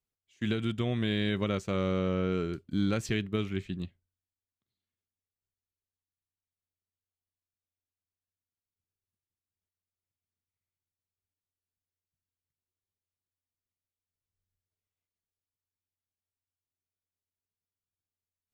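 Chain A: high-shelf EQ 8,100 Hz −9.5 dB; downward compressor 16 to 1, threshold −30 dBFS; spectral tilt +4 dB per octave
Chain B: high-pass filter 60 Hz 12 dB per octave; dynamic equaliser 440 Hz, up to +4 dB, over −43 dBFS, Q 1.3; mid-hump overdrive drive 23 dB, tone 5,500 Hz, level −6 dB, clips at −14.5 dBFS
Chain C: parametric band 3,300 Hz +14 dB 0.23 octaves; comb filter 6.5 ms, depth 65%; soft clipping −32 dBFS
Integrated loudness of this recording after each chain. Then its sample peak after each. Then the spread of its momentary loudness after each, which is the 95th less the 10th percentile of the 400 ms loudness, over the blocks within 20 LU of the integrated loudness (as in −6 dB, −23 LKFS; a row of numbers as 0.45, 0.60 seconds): −39.0, −24.5, −35.5 LKFS; −21.0, −15.0, −32.0 dBFS; 8, 7, 6 LU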